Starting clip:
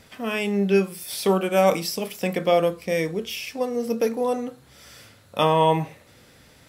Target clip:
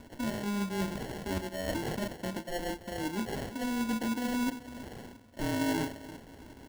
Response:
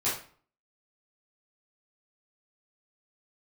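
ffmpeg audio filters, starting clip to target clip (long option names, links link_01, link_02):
-filter_complex "[0:a]aecho=1:1:3.4:0.72,areverse,acompressor=threshold=-31dB:ratio=8,areverse,equalizer=frequency=250:width_type=o:width=1:gain=5,equalizer=frequency=500:width_type=o:width=1:gain=-8,equalizer=frequency=1000:width_type=o:width=1:gain=9,equalizer=frequency=2000:width_type=o:width=1:gain=-10,equalizer=frequency=8000:width_type=o:width=1:gain=-5,asplit=2[link_01][link_02];[link_02]adelay=334,lowpass=frequency=840:poles=1,volume=-15dB,asplit=2[link_03][link_04];[link_04]adelay=334,lowpass=frequency=840:poles=1,volume=0.39,asplit=2[link_05][link_06];[link_06]adelay=334,lowpass=frequency=840:poles=1,volume=0.39,asplit=2[link_07][link_08];[link_08]adelay=334,lowpass=frequency=840:poles=1,volume=0.39[link_09];[link_01][link_03][link_05][link_07][link_09]amix=inputs=5:normalize=0,acrossover=split=1800[link_10][link_11];[link_10]acrusher=bits=4:mode=log:mix=0:aa=0.000001[link_12];[link_11]dynaudnorm=framelen=640:gausssize=3:maxgain=3.5dB[link_13];[link_12][link_13]amix=inputs=2:normalize=0,acrusher=samples=36:mix=1:aa=0.000001"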